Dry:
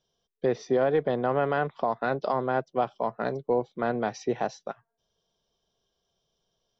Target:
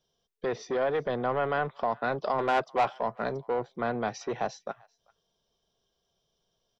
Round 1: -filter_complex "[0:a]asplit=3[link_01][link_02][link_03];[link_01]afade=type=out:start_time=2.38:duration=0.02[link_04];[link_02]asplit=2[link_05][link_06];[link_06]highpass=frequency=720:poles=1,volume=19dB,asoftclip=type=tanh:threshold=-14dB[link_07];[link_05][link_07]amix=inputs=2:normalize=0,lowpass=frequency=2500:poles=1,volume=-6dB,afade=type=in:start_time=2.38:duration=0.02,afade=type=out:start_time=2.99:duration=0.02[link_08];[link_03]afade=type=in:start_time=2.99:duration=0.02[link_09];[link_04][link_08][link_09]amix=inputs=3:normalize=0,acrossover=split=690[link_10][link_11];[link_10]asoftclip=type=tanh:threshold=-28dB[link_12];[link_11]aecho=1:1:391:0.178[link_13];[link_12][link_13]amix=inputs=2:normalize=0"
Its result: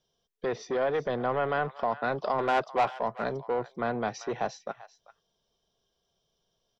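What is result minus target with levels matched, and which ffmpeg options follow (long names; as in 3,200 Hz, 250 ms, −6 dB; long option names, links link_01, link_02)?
echo-to-direct +10 dB
-filter_complex "[0:a]asplit=3[link_01][link_02][link_03];[link_01]afade=type=out:start_time=2.38:duration=0.02[link_04];[link_02]asplit=2[link_05][link_06];[link_06]highpass=frequency=720:poles=1,volume=19dB,asoftclip=type=tanh:threshold=-14dB[link_07];[link_05][link_07]amix=inputs=2:normalize=0,lowpass=frequency=2500:poles=1,volume=-6dB,afade=type=in:start_time=2.38:duration=0.02,afade=type=out:start_time=2.99:duration=0.02[link_08];[link_03]afade=type=in:start_time=2.99:duration=0.02[link_09];[link_04][link_08][link_09]amix=inputs=3:normalize=0,acrossover=split=690[link_10][link_11];[link_10]asoftclip=type=tanh:threshold=-28dB[link_12];[link_11]aecho=1:1:391:0.0562[link_13];[link_12][link_13]amix=inputs=2:normalize=0"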